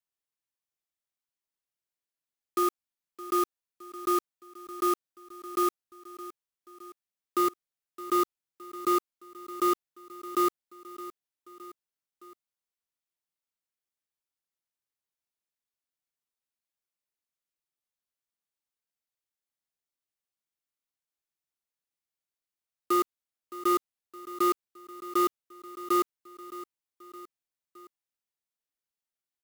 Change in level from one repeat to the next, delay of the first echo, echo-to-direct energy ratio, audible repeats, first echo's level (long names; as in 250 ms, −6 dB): −5.0 dB, 616 ms, −14.5 dB, 3, −16.0 dB